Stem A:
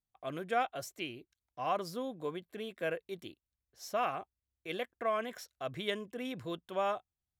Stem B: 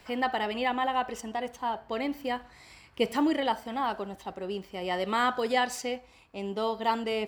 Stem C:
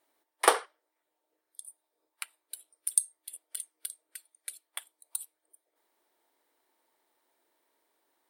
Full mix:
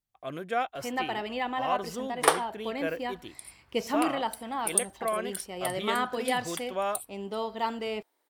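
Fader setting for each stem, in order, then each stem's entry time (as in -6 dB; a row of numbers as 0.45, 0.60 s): +2.5, -3.0, 0.0 dB; 0.00, 0.75, 1.80 s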